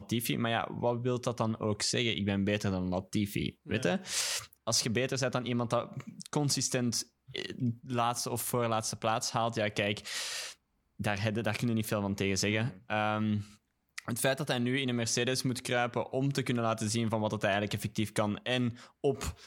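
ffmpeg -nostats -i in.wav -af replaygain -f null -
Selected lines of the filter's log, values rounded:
track_gain = +13.0 dB
track_peak = 0.157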